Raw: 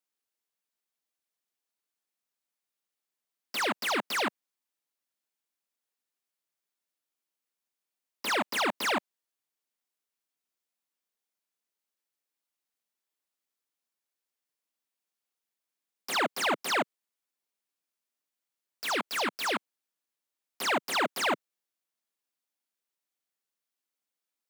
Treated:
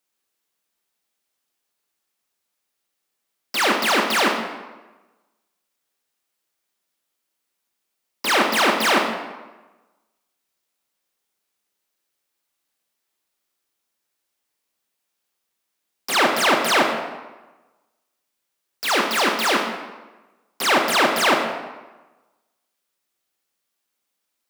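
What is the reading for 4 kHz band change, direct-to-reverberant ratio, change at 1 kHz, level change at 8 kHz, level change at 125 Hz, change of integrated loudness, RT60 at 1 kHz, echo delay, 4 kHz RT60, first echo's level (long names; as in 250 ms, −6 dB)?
+11.0 dB, 2.0 dB, +11.0 dB, +10.5 dB, +11.0 dB, +10.5 dB, 1.2 s, no echo audible, 0.80 s, no echo audible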